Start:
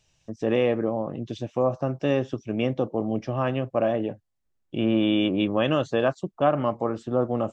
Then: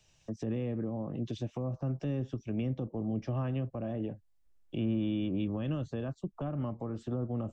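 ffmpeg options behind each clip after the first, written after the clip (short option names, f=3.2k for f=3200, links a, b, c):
-filter_complex "[0:a]asubboost=boost=3.5:cutoff=64,acrossover=split=310[a][b];[b]acompressor=threshold=-37dB:ratio=3[c];[a][c]amix=inputs=2:normalize=0,acrossover=split=200[d][e];[e]alimiter=level_in=7dB:limit=-24dB:level=0:latency=1:release=267,volume=-7dB[f];[d][f]amix=inputs=2:normalize=0"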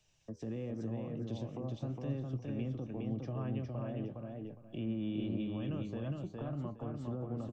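-af "aecho=1:1:411|822|1233:0.708|0.163|0.0375,flanger=delay=6.4:depth=7.9:regen=82:speed=0.9:shape=sinusoidal,volume=-1.5dB"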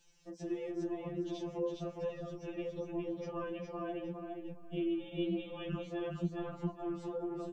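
-af "afftfilt=real='re*2.83*eq(mod(b,8),0)':imag='im*2.83*eq(mod(b,8),0)':win_size=2048:overlap=0.75,volume=6.5dB"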